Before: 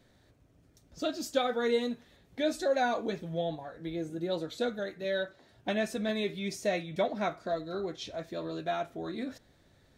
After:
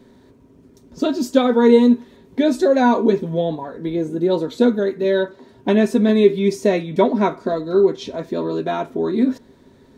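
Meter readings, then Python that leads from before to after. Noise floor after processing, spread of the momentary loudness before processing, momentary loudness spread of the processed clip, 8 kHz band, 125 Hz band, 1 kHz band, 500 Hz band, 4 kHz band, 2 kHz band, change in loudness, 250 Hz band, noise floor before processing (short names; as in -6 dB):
-50 dBFS, 10 LU, 10 LU, n/a, +14.0 dB, +11.5 dB, +14.5 dB, +6.5 dB, +8.0 dB, +15.0 dB, +18.5 dB, -64 dBFS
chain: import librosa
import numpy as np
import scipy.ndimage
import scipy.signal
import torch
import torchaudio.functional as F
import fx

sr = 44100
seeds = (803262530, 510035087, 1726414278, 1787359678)

y = fx.small_body(x, sr, hz=(250.0, 390.0, 950.0), ring_ms=45, db=16)
y = y * 10.0 ** (6.5 / 20.0)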